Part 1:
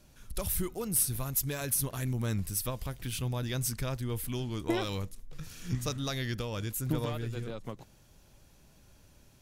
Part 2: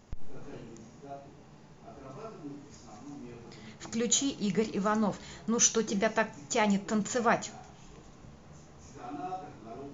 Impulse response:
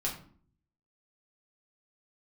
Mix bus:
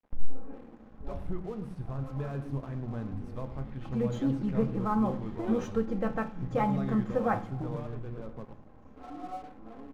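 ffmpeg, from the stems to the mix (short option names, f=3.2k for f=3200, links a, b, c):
-filter_complex "[0:a]asoftclip=type=tanh:threshold=-25.5dB,adelay=700,volume=-3dB,asplit=3[a][b][c];[b]volume=-8.5dB[d];[c]volume=-8.5dB[e];[1:a]aecho=1:1:3.8:0.83,volume=-4dB,asplit=2[f][g];[g]volume=-9dB[h];[2:a]atrim=start_sample=2205[i];[d][h]amix=inputs=2:normalize=0[j];[j][i]afir=irnorm=-1:irlink=0[k];[e]aecho=0:1:107:1[l];[a][f][k][l]amix=inputs=4:normalize=0,lowpass=1.1k,bandreject=f=50:t=h:w=6,bandreject=f=100:t=h:w=6,bandreject=f=150:t=h:w=6,bandreject=f=200:t=h:w=6,bandreject=f=250:t=h:w=6,bandreject=f=300:t=h:w=6,aeval=exprs='sgn(val(0))*max(abs(val(0))-0.00224,0)':c=same"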